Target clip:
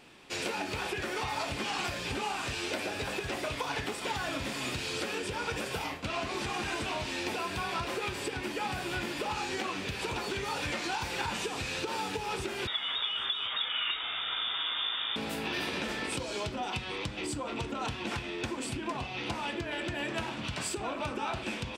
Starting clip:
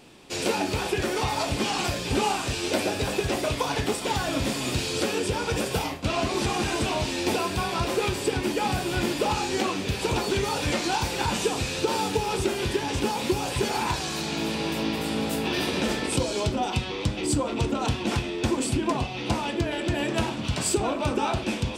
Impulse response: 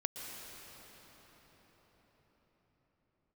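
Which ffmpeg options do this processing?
-filter_complex "[0:a]acompressor=threshold=-26dB:ratio=6,asettb=1/sr,asplit=3[a][b][c];[a]atrim=end=12.674[d];[b]atrim=start=12.67:end=15.16,asetpts=PTS-STARTPTS,afade=t=in:d=0.004:c=qsin,afade=t=out:st=2.486:d=0.004:c=qsin,lowpass=f=3.2k:t=q:w=0.5098,lowpass=f=3.2k:t=q:w=0.6013,lowpass=f=3.2k:t=q:w=0.9,lowpass=f=3.2k:t=q:w=2.563,afreqshift=-3800[e];[c]atrim=start=15.156[f];[d][e]acrossfade=d=0.004:c1=hsin:c2=qsin[g];[g][f]acrossfade=d=0.004:c1=qsin:c2=hsin,equalizer=f=1.8k:t=o:w=2.1:g=8,aecho=1:1:799:0.075,volume=-7.5dB"

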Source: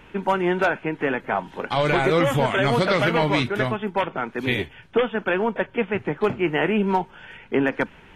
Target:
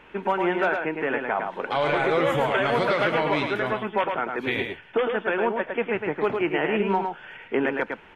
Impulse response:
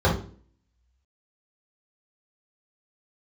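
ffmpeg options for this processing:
-filter_complex "[0:a]bass=f=250:g=-10,treble=f=4k:g=-10,alimiter=limit=-13.5dB:level=0:latency=1:release=111,asplit=2[a][b];[b]aecho=0:1:108:0.562[c];[a][c]amix=inputs=2:normalize=0"

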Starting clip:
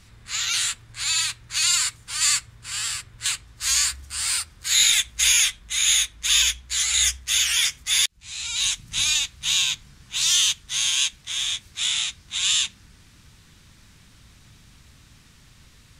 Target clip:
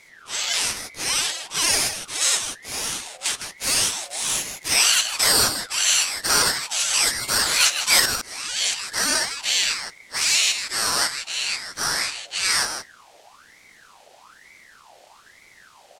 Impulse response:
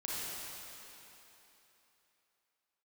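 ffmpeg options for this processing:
-filter_complex "[0:a]asettb=1/sr,asplit=3[a][b][c];[a]atrim=end=7.604[d];[b]atrim=start=7.6:end=8,asetpts=PTS-STARTPTS,afade=t=in:d=0.004:c=qsin,afade=t=out:st=0.396:d=0.004:c=qsin,acontrast=25[e];[c]atrim=start=7.996[f];[d][e]acrossfade=d=0.004:c1=hsin:c2=qsin[g];[g][f]acrossfade=d=0.004:c1=qsin:c2=hsin,asplit=2[h][i];[i]adelay=157.4,volume=-7dB,highshelf=f=4k:g=-3.54[j];[h][j]amix=inputs=2:normalize=0,aeval=exprs='val(0)*sin(2*PI*1400*n/s+1400*0.55/1.1*sin(2*PI*1.1*n/s))':c=same,volume=3dB"

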